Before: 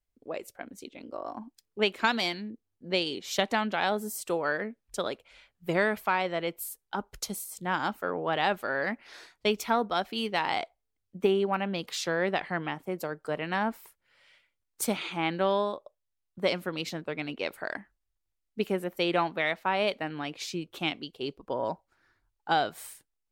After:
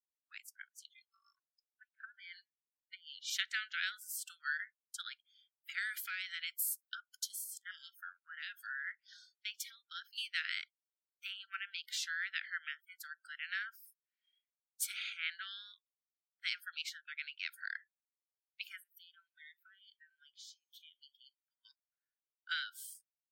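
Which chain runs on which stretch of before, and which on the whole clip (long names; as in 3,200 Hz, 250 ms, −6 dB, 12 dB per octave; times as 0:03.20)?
0:01.39–0:03.30: treble cut that deepens with the level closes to 590 Hz, closed at −21.5 dBFS + downward compressor 10 to 1, threshold −31 dBFS + multiband upward and downward expander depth 100%
0:05.78–0:06.95: high-pass filter 600 Hz 6 dB per octave + high-shelf EQ 3,200 Hz +11 dB + downward compressor 4 to 1, threshold −27 dBFS
0:07.47–0:10.18: downward compressor 3 to 1, threshold −29 dBFS + notch on a step sequencer 4.2 Hz 280–5,100 Hz
0:18.80–0:21.65: high-shelf EQ 11,000 Hz +7.5 dB + downward compressor 5 to 1, threshold −41 dBFS + tuned comb filter 70 Hz, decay 1.9 s, mix 40%
whole clip: Butterworth high-pass 1,400 Hz 96 dB per octave; noise reduction from a noise print of the clip's start 27 dB; level −4.5 dB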